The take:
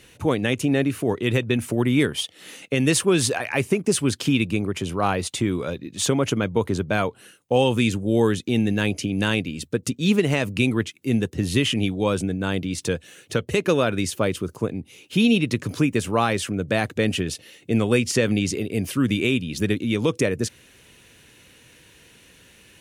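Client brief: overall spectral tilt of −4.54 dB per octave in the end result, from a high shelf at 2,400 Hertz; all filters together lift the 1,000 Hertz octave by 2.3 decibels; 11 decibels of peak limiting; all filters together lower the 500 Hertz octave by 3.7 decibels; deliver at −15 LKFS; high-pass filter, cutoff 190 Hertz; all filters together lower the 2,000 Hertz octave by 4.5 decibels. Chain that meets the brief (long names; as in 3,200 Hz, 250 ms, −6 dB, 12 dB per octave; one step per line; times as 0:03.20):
high-pass filter 190 Hz
parametric band 500 Hz −5.5 dB
parametric band 1,000 Hz +7 dB
parametric band 2,000 Hz −6 dB
high-shelf EQ 2,400 Hz −3 dB
level +14 dB
brickwall limiter −4 dBFS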